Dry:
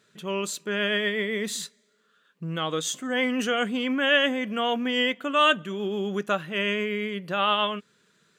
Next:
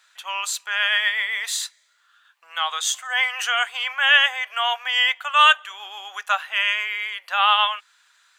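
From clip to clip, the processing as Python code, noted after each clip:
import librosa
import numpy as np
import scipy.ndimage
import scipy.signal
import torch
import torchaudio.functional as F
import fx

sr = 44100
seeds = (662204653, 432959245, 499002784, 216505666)

y = scipy.signal.sosfilt(scipy.signal.ellip(4, 1.0, 70, 790.0, 'highpass', fs=sr, output='sos'), x)
y = F.gain(torch.from_numpy(y), 7.5).numpy()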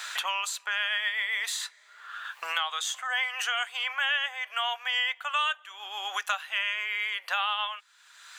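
y = fx.band_squash(x, sr, depth_pct=100)
y = F.gain(torch.from_numpy(y), -8.5).numpy()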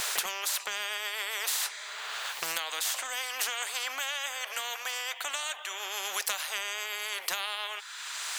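y = fx.spectral_comp(x, sr, ratio=4.0)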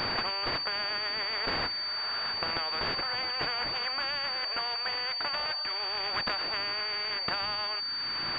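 y = fx.pwm(x, sr, carrier_hz=4600.0)
y = F.gain(torch.from_numpy(y), 2.5).numpy()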